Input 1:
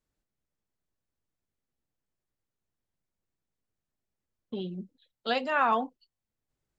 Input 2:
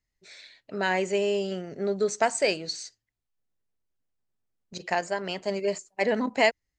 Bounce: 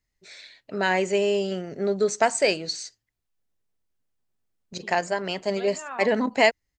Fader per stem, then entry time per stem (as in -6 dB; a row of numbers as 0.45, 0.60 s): -11.5, +3.0 dB; 0.30, 0.00 s